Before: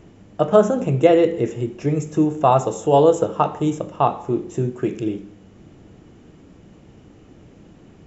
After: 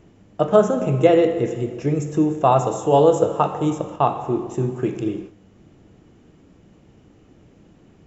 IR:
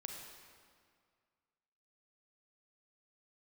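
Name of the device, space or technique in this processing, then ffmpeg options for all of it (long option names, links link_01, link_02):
keyed gated reverb: -filter_complex "[0:a]asplit=3[link_01][link_02][link_03];[1:a]atrim=start_sample=2205[link_04];[link_02][link_04]afir=irnorm=-1:irlink=0[link_05];[link_03]apad=whole_len=355594[link_06];[link_05][link_06]sidechaingate=range=-33dB:threshold=-36dB:ratio=16:detection=peak,volume=-0.5dB[link_07];[link_01][link_07]amix=inputs=2:normalize=0,volume=-4.5dB"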